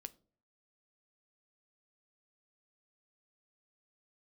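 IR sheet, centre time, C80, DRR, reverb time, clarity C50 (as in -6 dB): 2 ms, 26.5 dB, 11.5 dB, no single decay rate, 22.0 dB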